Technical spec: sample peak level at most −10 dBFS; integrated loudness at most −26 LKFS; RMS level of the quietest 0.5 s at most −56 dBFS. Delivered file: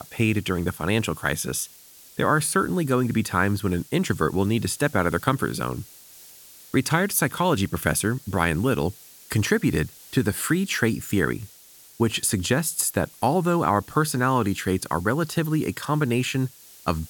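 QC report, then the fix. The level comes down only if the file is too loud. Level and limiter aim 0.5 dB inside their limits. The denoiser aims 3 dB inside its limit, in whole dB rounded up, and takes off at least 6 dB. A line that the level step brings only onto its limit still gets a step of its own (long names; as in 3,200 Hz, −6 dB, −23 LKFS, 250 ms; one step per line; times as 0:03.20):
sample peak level −5.0 dBFS: out of spec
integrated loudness −24.0 LKFS: out of spec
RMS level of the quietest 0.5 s −50 dBFS: out of spec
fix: broadband denoise 7 dB, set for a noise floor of −50 dBFS
level −2.5 dB
brickwall limiter −10.5 dBFS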